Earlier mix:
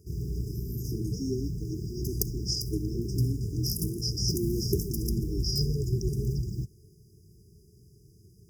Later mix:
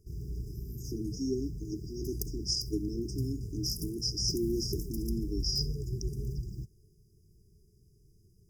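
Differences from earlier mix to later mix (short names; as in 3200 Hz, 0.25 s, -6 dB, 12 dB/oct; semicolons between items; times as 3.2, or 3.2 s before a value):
background -8.5 dB; master: remove HPF 67 Hz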